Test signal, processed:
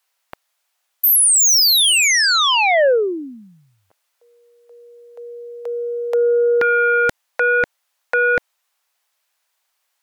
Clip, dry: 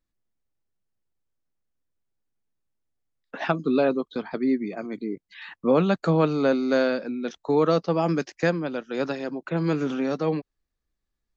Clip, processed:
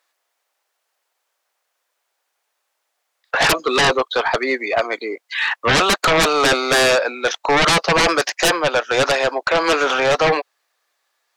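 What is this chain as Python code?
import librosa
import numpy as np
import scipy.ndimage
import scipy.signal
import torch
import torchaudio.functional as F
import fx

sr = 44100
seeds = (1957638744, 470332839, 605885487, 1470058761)

y = scipy.signal.sosfilt(scipy.signal.butter(4, 610.0, 'highpass', fs=sr, output='sos'), x)
y = fx.high_shelf(y, sr, hz=3900.0, db=-4.5)
y = fx.fold_sine(y, sr, drive_db=19, ceiling_db=-11.0)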